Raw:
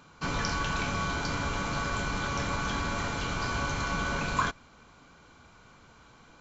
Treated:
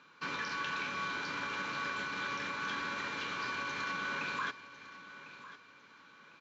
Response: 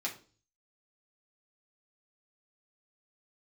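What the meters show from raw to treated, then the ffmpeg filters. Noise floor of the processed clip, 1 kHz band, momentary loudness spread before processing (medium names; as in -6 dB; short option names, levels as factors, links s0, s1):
-60 dBFS, -6.0 dB, 2 LU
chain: -af "alimiter=limit=0.0708:level=0:latency=1:release=36,highpass=250,equalizer=f=710:t=q:w=4:g=-9,equalizer=f=1100:t=q:w=4:g=3,equalizer=f=1700:t=q:w=4:g=8,equalizer=f=2500:t=q:w=4:g=6,equalizer=f=3700:t=q:w=4:g=4,lowpass=f=5900:w=0.5412,lowpass=f=5900:w=1.3066,aecho=1:1:1051|2102|3153:0.178|0.0569|0.0182,volume=0.473"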